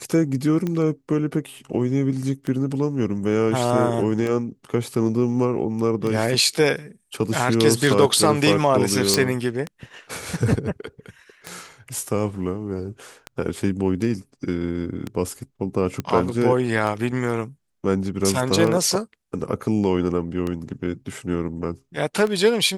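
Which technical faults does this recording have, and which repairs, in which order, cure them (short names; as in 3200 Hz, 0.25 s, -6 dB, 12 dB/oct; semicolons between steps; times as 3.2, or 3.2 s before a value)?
tick 33 1/3 rpm -14 dBFS
9.14 pop
16 pop -13 dBFS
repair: de-click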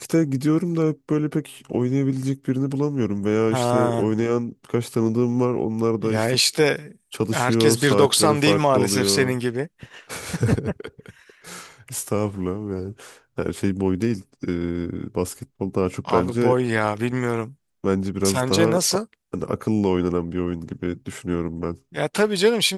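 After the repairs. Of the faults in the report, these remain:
none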